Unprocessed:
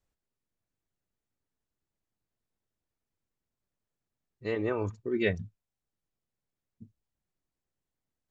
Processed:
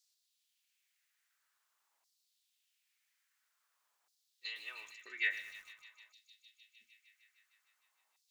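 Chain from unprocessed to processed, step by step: on a send at -16.5 dB: reverb RT60 0.40 s, pre-delay 6 ms; on the sum: compressor 12:1, threshold -39 dBFS, peak gain reduction 17.5 dB; low shelf 170 Hz -11.5 dB; thin delay 0.153 s, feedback 82%, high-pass 3800 Hz, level -7 dB; LFO high-pass saw down 0.49 Hz 860–4800 Hz; lo-fi delay 0.109 s, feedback 55%, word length 10-bit, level -13.5 dB; gain +10 dB

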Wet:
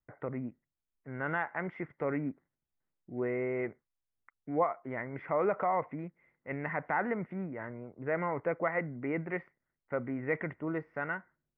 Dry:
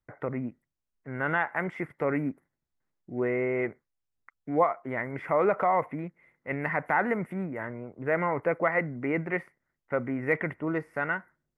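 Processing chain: air absorption 260 m; gain -4.5 dB

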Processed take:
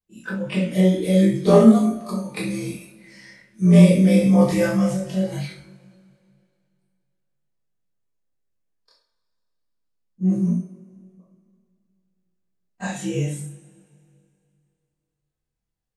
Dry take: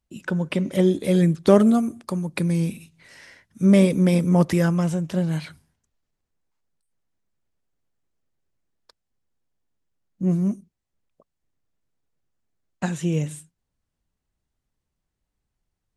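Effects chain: short-time reversal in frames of 54 ms; two-slope reverb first 0.51 s, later 2.6 s, from -18 dB, DRR -5.5 dB; spectral noise reduction 7 dB; gain -1 dB

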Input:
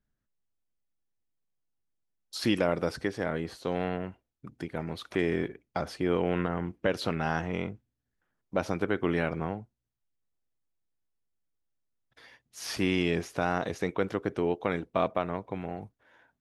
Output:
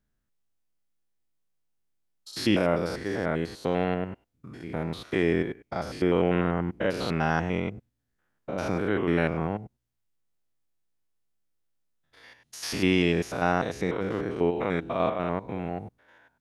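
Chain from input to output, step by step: stepped spectrum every 0.1 s; gain +5 dB

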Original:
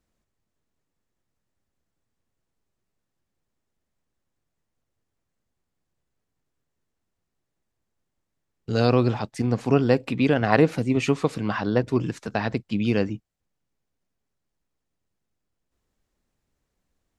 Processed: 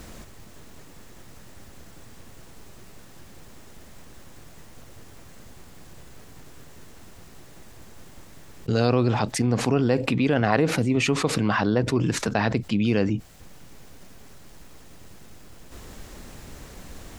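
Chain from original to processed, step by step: fast leveller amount 70%; gain -5 dB

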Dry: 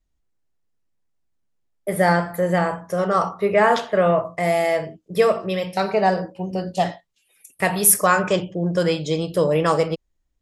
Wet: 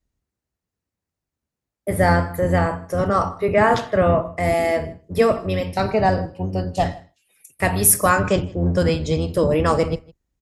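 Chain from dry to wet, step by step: octaver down 1 oct, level +1 dB; HPF 40 Hz; bell 3300 Hz -3.5 dB 0.32 oct; echo 0.158 s -23.5 dB

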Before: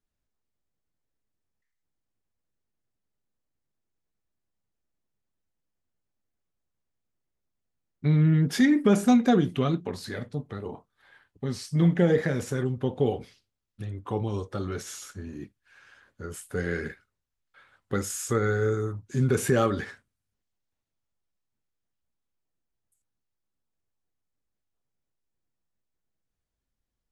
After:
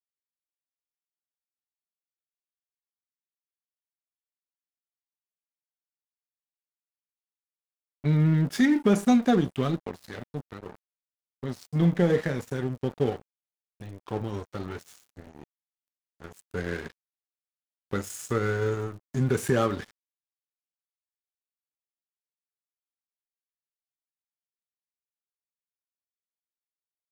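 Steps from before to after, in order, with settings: crackle 180/s -44 dBFS; crossover distortion -37 dBFS

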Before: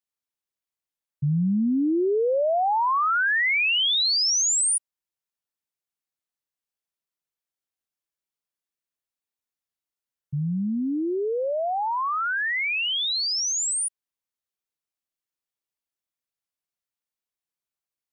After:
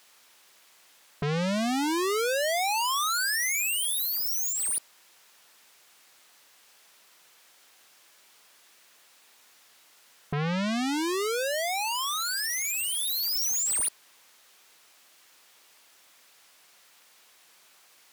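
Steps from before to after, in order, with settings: overdrive pedal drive 36 dB, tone 5200 Hz, clips at -18.5 dBFS; sine folder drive 9 dB, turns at -18.5 dBFS; gain -5.5 dB

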